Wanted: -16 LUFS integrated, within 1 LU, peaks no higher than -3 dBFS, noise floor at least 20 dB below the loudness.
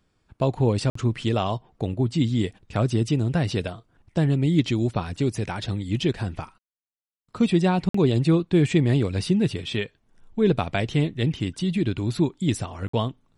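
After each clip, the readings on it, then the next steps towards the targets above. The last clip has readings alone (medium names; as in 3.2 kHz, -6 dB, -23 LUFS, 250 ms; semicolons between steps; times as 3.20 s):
dropouts 3; longest dropout 54 ms; loudness -24.0 LUFS; peak level -8.5 dBFS; loudness target -16.0 LUFS
-> interpolate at 0.90/7.89/12.88 s, 54 ms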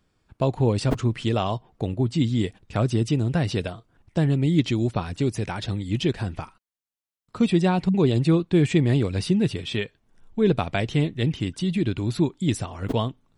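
dropouts 0; loudness -24.0 LUFS; peak level -8.5 dBFS; loudness target -16.0 LUFS
-> trim +8 dB; peak limiter -3 dBFS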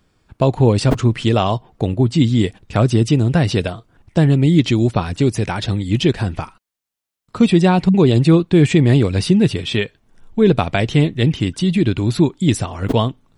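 loudness -16.5 LUFS; peak level -3.0 dBFS; noise floor -80 dBFS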